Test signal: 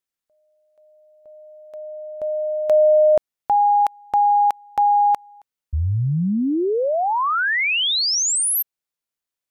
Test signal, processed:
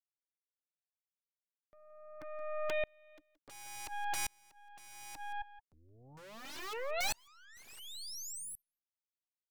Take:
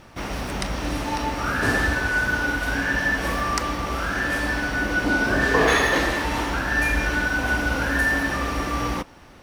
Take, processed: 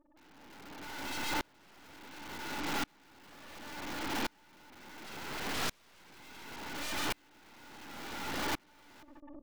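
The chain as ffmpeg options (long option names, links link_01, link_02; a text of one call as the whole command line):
ffmpeg -i in.wav -filter_complex "[0:a]asplit=3[link_01][link_02][link_03];[link_01]bandpass=frequency=300:width_type=q:width=8,volume=0dB[link_04];[link_02]bandpass=frequency=870:width_type=q:width=8,volume=-6dB[link_05];[link_03]bandpass=frequency=2240:width_type=q:width=8,volume=-9dB[link_06];[link_04][link_05][link_06]amix=inputs=3:normalize=0,afftfilt=real='re*gte(hypot(re,im),0.00631)':imag='im*gte(hypot(re,im),0.00631)':win_size=1024:overlap=0.75,asplit=2[link_07][link_08];[link_08]acompressor=mode=upward:threshold=-31dB:ratio=4:attack=6.3:release=58:knee=2.83:detection=peak,volume=0dB[link_09];[link_07][link_09]amix=inputs=2:normalize=0,aeval=exprs='(mod(23.7*val(0)+1,2)-1)/23.7':channel_layout=same,aemphasis=mode=reproduction:type=50fm,aeval=exprs='0.0447*(cos(1*acos(clip(val(0)/0.0447,-1,1)))-cos(1*PI/2))+0.0112*(cos(4*acos(clip(val(0)/0.0447,-1,1)))-cos(4*PI/2))+0.0112*(cos(5*acos(clip(val(0)/0.0447,-1,1)))-cos(5*PI/2))+0.0224*(cos(6*acos(clip(val(0)/0.0447,-1,1)))-cos(6*PI/2))':channel_layout=same,aecho=1:1:173:0.112,aeval=exprs='val(0)*pow(10,-35*if(lt(mod(-0.7*n/s,1),2*abs(-0.7)/1000),1-mod(-0.7*n/s,1)/(2*abs(-0.7)/1000),(mod(-0.7*n/s,1)-2*abs(-0.7)/1000)/(1-2*abs(-0.7)/1000))/20)':channel_layout=same,volume=-1dB" out.wav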